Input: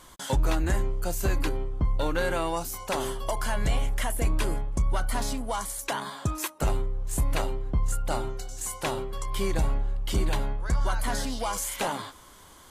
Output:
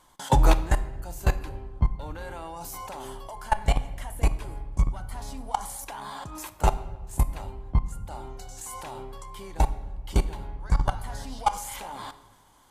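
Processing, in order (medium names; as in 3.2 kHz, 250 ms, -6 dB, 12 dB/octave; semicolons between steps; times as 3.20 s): peaking EQ 850 Hz +9 dB 0.45 oct; level held to a coarse grid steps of 22 dB; simulated room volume 820 m³, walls mixed, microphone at 0.4 m; trim +6 dB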